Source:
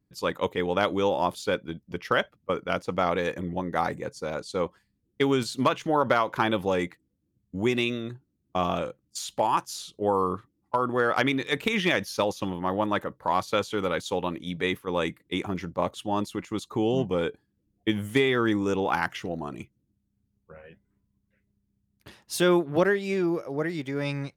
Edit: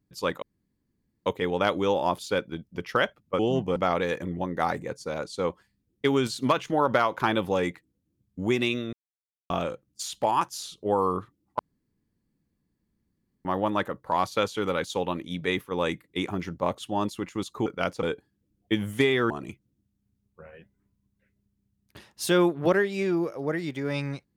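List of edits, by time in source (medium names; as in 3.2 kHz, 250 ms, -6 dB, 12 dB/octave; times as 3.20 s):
0.42 s: insert room tone 0.84 s
2.55–2.92 s: swap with 16.82–17.19 s
8.09–8.66 s: mute
10.75–12.61 s: room tone
18.46–19.41 s: delete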